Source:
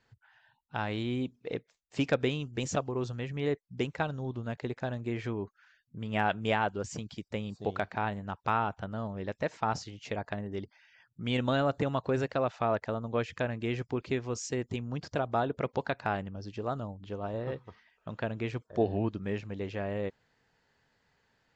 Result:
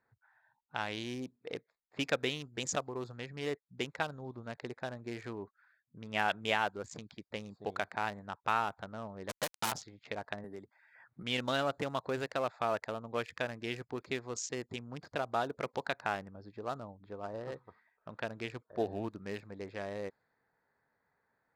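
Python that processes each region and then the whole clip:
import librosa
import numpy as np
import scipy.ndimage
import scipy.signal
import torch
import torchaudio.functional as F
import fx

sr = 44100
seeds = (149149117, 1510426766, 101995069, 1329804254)

y = fx.chain(x, sr, fx.quant_companded(bits=2),
    fx.transformer_sat(knee_hz=150.0), at=(9.29, 9.72))
y = fx.chain(y, sr, fx.low_shelf(hz=81.0, db=-10.0),
    fx.resample_bad(factor=4, down='none', up='hold'),
    fx.band_squash(depth_pct=100), at=(10.44, 11.23))
y = fx.wiener(y, sr, points=15)
y = fx.env_lowpass(y, sr, base_hz=2600.0, full_db=-27.5)
y = fx.tilt_eq(y, sr, slope=3.0)
y = y * 10.0 ** (-2.0 / 20.0)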